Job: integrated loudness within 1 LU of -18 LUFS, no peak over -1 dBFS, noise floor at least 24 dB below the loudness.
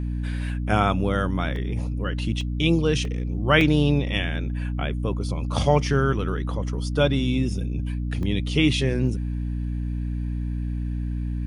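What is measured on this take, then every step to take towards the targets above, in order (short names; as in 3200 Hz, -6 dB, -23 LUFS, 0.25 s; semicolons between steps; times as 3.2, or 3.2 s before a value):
dropouts 6; longest dropout 1.4 ms; hum 60 Hz; harmonics up to 300 Hz; hum level -24 dBFS; loudness -24.5 LUFS; peak -5.0 dBFS; loudness target -18.0 LUFS
-> interpolate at 1.56/2.41/3.05/3.61/8.23/9.07, 1.4 ms; de-hum 60 Hz, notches 5; gain +6.5 dB; limiter -1 dBFS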